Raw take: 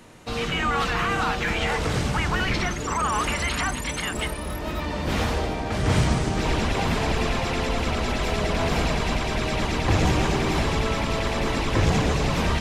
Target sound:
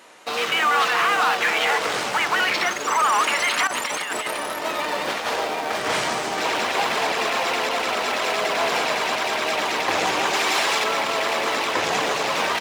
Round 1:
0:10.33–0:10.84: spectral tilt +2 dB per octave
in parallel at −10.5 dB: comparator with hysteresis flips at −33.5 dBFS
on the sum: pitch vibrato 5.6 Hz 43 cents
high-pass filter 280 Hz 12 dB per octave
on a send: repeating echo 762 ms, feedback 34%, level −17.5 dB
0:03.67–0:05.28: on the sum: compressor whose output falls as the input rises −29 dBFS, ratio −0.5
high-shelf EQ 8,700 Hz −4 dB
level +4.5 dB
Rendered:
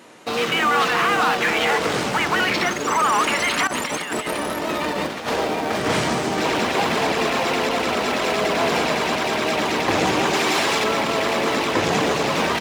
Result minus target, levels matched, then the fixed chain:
250 Hz band +8.5 dB
0:10.33–0:10.84: spectral tilt +2 dB per octave
in parallel at −10.5 dB: comparator with hysteresis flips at −33.5 dBFS
on the sum: pitch vibrato 5.6 Hz 43 cents
high-pass filter 580 Hz 12 dB per octave
on a send: repeating echo 762 ms, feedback 34%, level −17.5 dB
0:03.67–0:05.28: on the sum: compressor whose output falls as the input rises −29 dBFS, ratio −0.5
high-shelf EQ 8,700 Hz −4 dB
level +4.5 dB

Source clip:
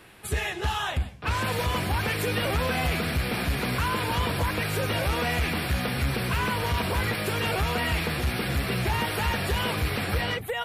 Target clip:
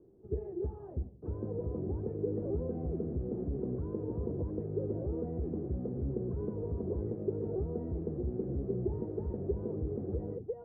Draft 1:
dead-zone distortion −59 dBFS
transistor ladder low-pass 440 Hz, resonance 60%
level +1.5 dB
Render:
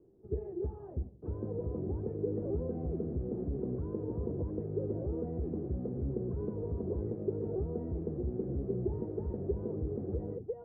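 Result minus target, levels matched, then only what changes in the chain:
dead-zone distortion: distortion +8 dB
change: dead-zone distortion −67.5 dBFS

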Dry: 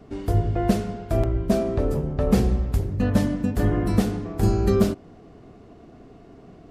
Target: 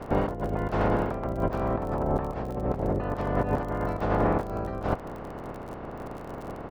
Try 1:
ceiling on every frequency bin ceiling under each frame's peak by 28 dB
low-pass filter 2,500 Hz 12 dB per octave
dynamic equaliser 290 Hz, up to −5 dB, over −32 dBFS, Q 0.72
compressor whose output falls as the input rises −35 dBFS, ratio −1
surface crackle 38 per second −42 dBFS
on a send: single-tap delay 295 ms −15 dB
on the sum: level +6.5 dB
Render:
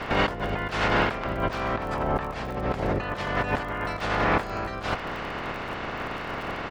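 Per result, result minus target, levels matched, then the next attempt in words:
2,000 Hz band +10.0 dB; echo-to-direct +6.5 dB
ceiling on every frequency bin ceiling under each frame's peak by 28 dB
low-pass filter 740 Hz 12 dB per octave
dynamic equaliser 290 Hz, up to −5 dB, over −32 dBFS, Q 0.72
compressor whose output falls as the input rises −35 dBFS, ratio −1
surface crackle 38 per second −42 dBFS
on a send: single-tap delay 295 ms −15 dB
on the sum: level +6.5 dB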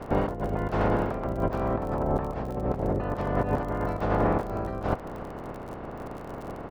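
echo-to-direct +6.5 dB
ceiling on every frequency bin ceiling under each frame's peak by 28 dB
low-pass filter 740 Hz 12 dB per octave
dynamic equaliser 290 Hz, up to −5 dB, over −32 dBFS, Q 0.72
compressor whose output falls as the input rises −35 dBFS, ratio −1
surface crackle 38 per second −42 dBFS
on a send: single-tap delay 295 ms −21.5 dB
on the sum: level +6.5 dB

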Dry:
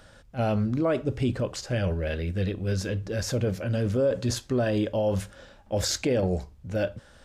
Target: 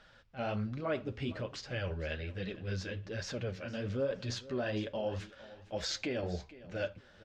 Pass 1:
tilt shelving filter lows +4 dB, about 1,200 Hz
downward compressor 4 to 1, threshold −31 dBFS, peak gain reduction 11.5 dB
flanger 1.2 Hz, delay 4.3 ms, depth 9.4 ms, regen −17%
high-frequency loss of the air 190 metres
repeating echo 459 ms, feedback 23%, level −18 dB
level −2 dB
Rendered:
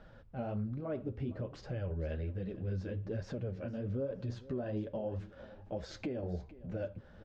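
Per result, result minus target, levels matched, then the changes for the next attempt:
downward compressor: peak gain reduction +11.5 dB; 1,000 Hz band −4.0 dB
remove: downward compressor 4 to 1, threshold −31 dBFS, peak gain reduction 11.5 dB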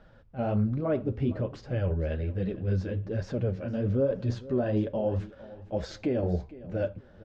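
1,000 Hz band −4.5 dB
change: tilt shelving filter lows −6.5 dB, about 1,200 Hz

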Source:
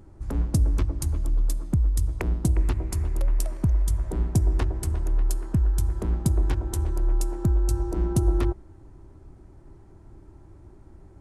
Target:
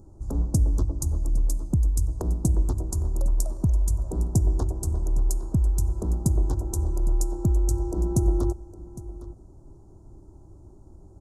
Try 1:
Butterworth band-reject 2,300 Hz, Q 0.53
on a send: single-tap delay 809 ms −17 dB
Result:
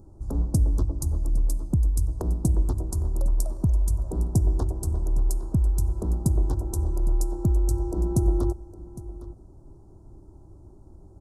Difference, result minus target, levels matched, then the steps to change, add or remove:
8,000 Hz band −3.0 dB
add after Butterworth band-reject: parametric band 6,800 Hz +6 dB 0.43 octaves

